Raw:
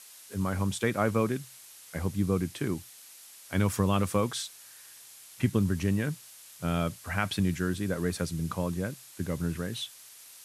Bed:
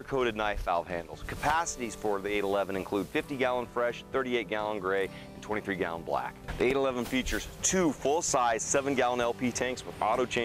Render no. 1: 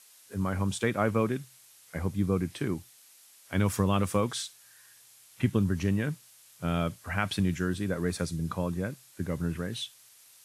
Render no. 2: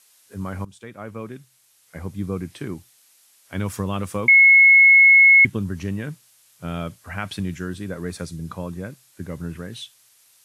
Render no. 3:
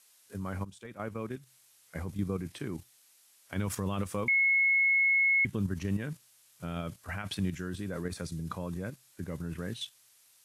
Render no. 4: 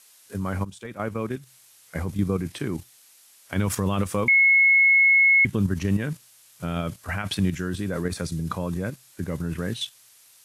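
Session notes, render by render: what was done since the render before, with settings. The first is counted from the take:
noise print and reduce 6 dB
0.65–2.24 fade in, from -16.5 dB; 4.28–5.45 bleep 2180 Hz -8 dBFS
level quantiser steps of 9 dB; limiter -22 dBFS, peak gain reduction 10.5 dB
gain +8.5 dB

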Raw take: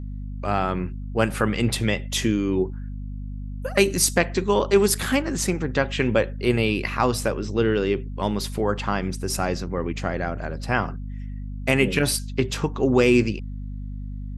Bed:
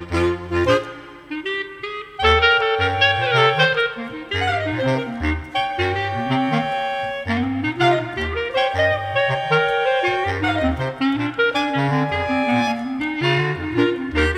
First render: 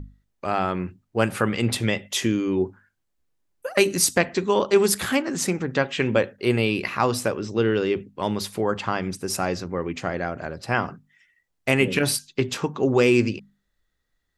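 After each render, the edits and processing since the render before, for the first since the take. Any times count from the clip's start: notches 50/100/150/200/250 Hz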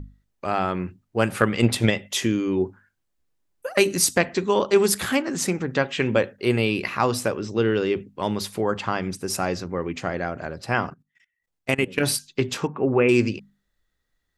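1.39–1.91 transient shaper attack +10 dB, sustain 0 dB; 10.9–11.98 level quantiser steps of 20 dB; 12.67–13.09 elliptic low-pass 2600 Hz, stop band 50 dB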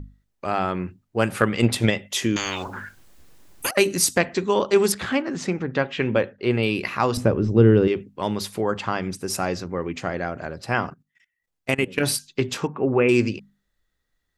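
2.36–3.71 spectral compressor 10:1; 4.92–6.63 air absorption 130 m; 7.17–7.88 tilt -4 dB/oct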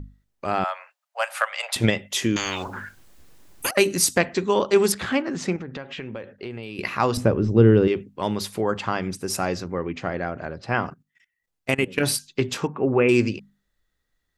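0.64–1.76 steep high-pass 580 Hz 72 dB/oct; 5.56–6.79 compressor, threshold -31 dBFS; 9.79–10.86 air absorption 110 m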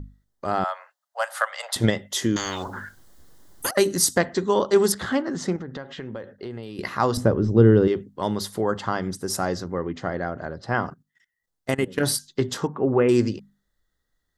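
bell 2600 Hz -12.5 dB 0.29 oct; notch 2300 Hz, Q 8.8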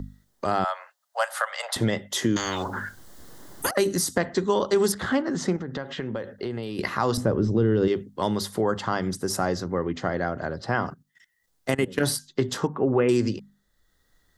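limiter -11.5 dBFS, peak gain reduction 7 dB; three-band squash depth 40%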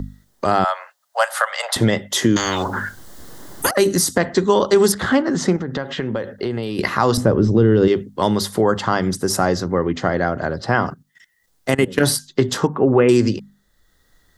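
gain +7.5 dB; limiter -2 dBFS, peak gain reduction 2 dB

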